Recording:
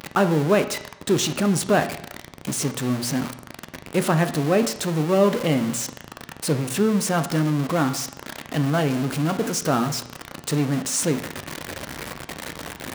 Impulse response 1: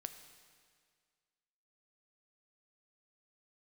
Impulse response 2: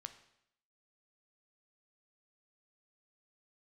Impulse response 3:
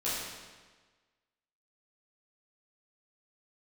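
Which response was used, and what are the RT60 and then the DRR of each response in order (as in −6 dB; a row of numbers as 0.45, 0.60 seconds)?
2; 1.9, 0.75, 1.4 seconds; 8.0, 8.5, −10.5 decibels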